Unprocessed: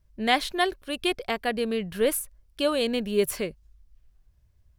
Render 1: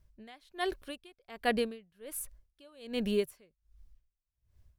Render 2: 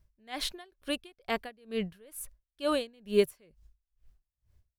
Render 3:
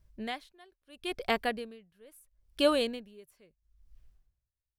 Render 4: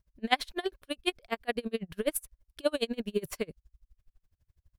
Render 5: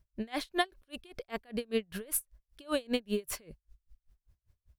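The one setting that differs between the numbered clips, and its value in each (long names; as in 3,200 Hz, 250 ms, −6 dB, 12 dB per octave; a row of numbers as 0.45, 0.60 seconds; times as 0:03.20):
tremolo with a sine in dB, speed: 1.3, 2.2, 0.75, 12, 5.1 Hertz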